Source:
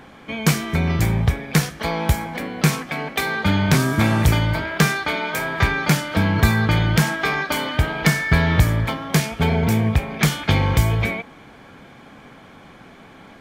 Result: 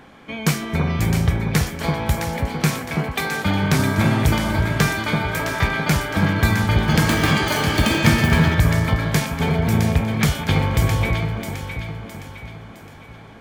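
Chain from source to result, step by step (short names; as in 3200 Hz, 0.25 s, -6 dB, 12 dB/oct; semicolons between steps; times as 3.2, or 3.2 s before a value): echo with dull and thin repeats by turns 0.331 s, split 1300 Hz, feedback 65%, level -3 dB; 6.67–9.03 echoes that change speed 0.207 s, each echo +6 st, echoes 2; gain -2 dB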